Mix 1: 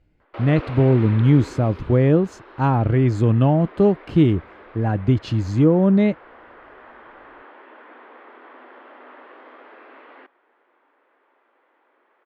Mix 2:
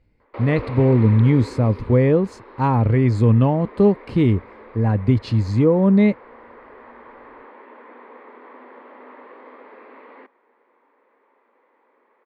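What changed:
background: add spectral tilt −2 dB per octave
master: add EQ curve with evenly spaced ripples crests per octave 0.93, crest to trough 7 dB

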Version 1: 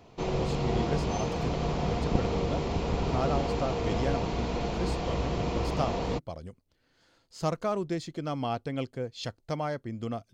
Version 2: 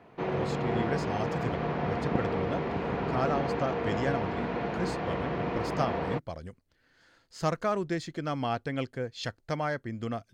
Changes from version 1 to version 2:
background: add band-pass filter 130–2,300 Hz
master: add parametric band 1,700 Hz +8.5 dB 0.67 octaves

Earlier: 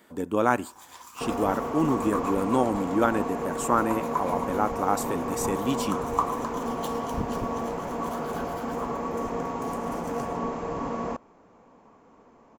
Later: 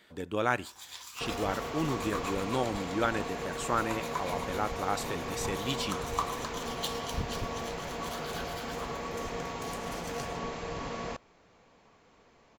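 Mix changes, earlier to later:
speech: add high-shelf EQ 3,900 Hz −10.5 dB
master: add graphic EQ with 10 bands 250 Hz −10 dB, 500 Hz −3 dB, 1,000 Hz −8 dB, 2,000 Hz +3 dB, 4,000 Hz +10 dB

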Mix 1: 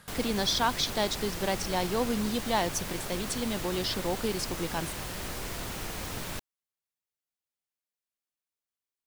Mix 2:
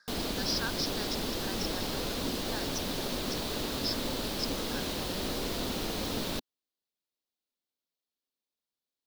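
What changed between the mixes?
speech: add pair of resonant band-passes 2,900 Hz, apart 1.7 octaves
master: add octave-band graphic EQ 125/250/500/2,000/4,000/8,000 Hz −3/+9/+5/−4/+9/−4 dB

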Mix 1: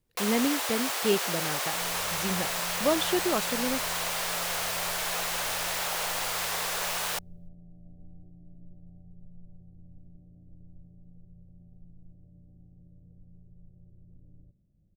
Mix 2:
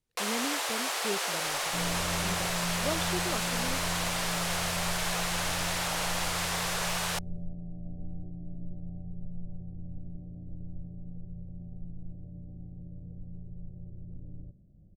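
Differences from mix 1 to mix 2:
speech −9.0 dB
second sound +10.5 dB
master: add low-pass filter 11,000 Hz 12 dB per octave

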